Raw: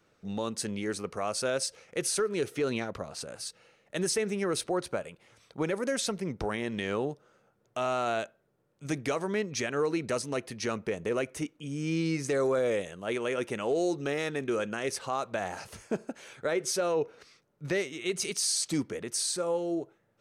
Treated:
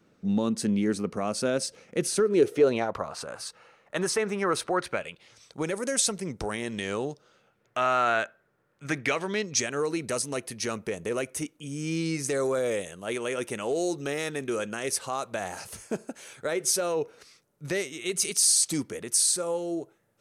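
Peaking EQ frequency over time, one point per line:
peaking EQ +11.5 dB 1.4 oct
2.14 s 220 Hz
3.05 s 1.1 kHz
4.62 s 1.1 kHz
5.60 s 8.6 kHz
6.90 s 8.6 kHz
7.81 s 1.6 kHz
8.97 s 1.6 kHz
9.77 s 11 kHz

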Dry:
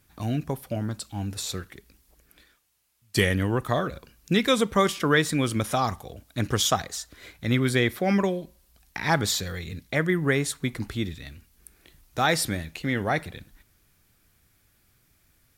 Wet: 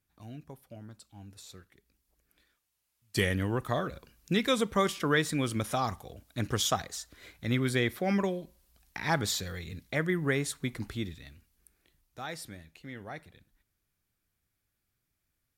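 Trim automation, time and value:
1.71 s -17.5 dB
3.26 s -5.5 dB
10.94 s -5.5 dB
12.20 s -17 dB

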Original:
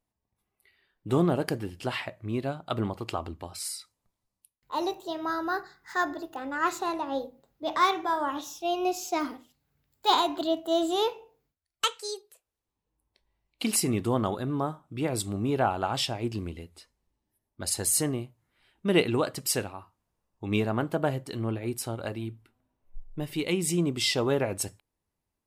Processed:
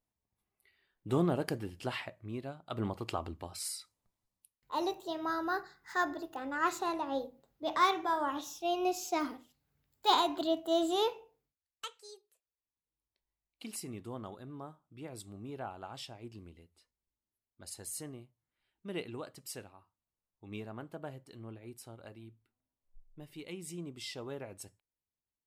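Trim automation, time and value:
1.90 s -5.5 dB
2.63 s -12.5 dB
2.87 s -4 dB
11.16 s -4 dB
11.85 s -16.5 dB

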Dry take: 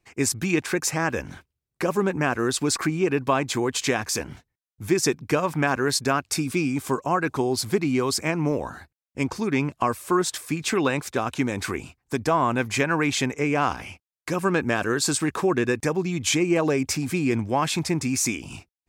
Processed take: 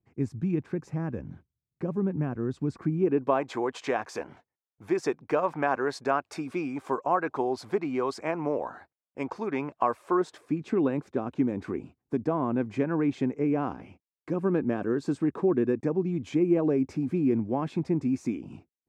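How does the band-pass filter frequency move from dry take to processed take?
band-pass filter, Q 1
2.84 s 150 Hz
3.44 s 700 Hz
10.04 s 700 Hz
10.62 s 270 Hz

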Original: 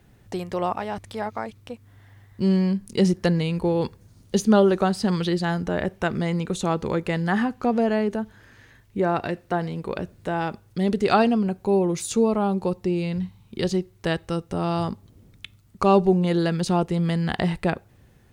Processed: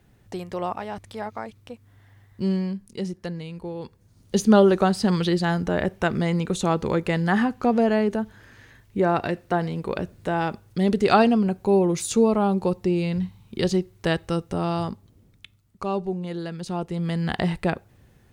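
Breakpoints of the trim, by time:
2.46 s -3 dB
3.08 s -11 dB
3.85 s -11 dB
4.44 s +1.5 dB
14.41 s +1.5 dB
15.88 s -9.5 dB
16.57 s -9.5 dB
17.28 s -0.5 dB

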